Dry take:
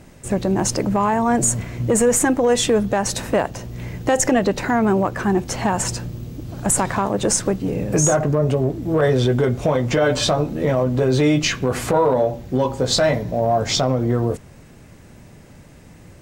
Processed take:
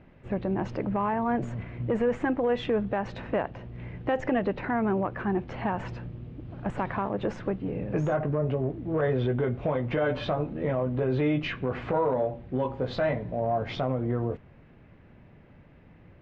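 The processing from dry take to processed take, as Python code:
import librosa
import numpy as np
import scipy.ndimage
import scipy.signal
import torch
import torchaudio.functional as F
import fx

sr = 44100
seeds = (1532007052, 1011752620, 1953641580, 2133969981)

y = scipy.signal.sosfilt(scipy.signal.butter(4, 2900.0, 'lowpass', fs=sr, output='sos'), x)
y = F.gain(torch.from_numpy(y), -9.0).numpy()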